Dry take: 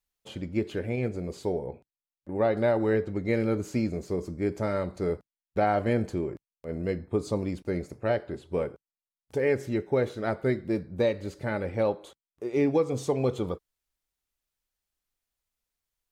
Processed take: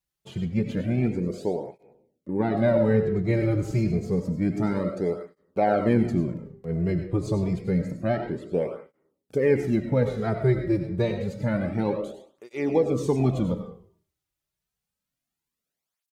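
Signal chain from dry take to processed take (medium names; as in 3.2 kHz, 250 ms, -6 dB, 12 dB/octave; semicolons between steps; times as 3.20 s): peaking EQ 160 Hz +9.5 dB 1.5 oct; frequency-shifting echo 101 ms, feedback 39%, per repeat -80 Hz, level -18.5 dB; on a send at -6.5 dB: reverberation RT60 0.50 s, pre-delay 55 ms; on the sum: cancelling through-zero flanger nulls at 0.28 Hz, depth 4.6 ms; trim +2 dB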